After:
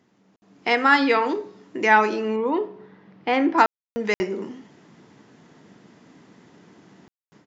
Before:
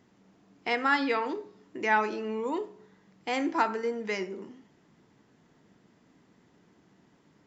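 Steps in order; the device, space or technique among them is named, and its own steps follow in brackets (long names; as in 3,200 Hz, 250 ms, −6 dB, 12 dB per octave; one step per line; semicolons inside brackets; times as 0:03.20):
call with lost packets (high-pass filter 110 Hz; downsampling to 16,000 Hz; automatic gain control gain up to 11.5 dB; dropped packets of 60 ms bursts)
0:02.36–0:03.58: high-frequency loss of the air 260 metres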